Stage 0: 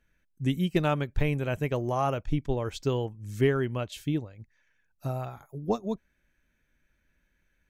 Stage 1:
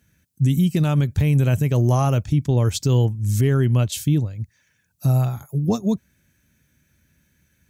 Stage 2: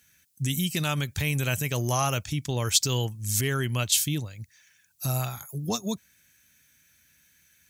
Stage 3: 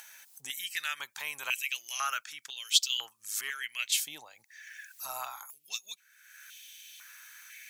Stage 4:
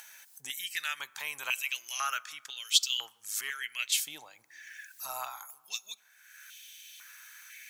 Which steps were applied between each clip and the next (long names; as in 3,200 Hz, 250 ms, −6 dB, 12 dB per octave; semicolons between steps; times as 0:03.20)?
high-pass filter 78 Hz 24 dB per octave; bass and treble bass +14 dB, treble +14 dB; brickwall limiter −16 dBFS, peak gain reduction 10 dB; level +5 dB
tilt shelving filter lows −9.5 dB; level −2 dB
upward compression, threshold −30 dBFS; high-pass on a step sequencer 2 Hz 810–3,100 Hz; level −7.5 dB
convolution reverb RT60 1.9 s, pre-delay 7 ms, DRR 19.5 dB